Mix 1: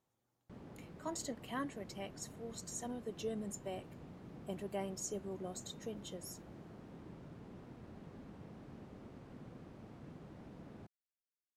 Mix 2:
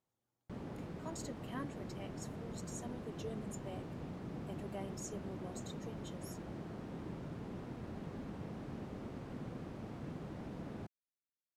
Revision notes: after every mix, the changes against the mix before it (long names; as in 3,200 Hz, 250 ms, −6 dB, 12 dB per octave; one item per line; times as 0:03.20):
speech −5.0 dB
background +7.5 dB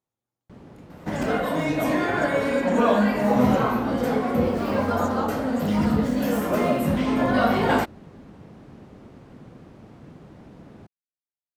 second sound: unmuted